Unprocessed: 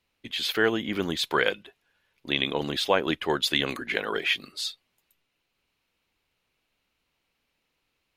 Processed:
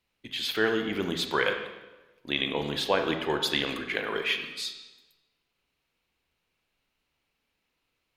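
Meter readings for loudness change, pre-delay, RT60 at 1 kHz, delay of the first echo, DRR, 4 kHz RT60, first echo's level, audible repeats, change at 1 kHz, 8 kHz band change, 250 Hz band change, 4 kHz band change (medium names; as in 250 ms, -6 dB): -2.0 dB, 25 ms, 1.1 s, no echo, 5.0 dB, 0.95 s, no echo, no echo, -2.0 dB, -2.5 dB, -1.5 dB, -2.5 dB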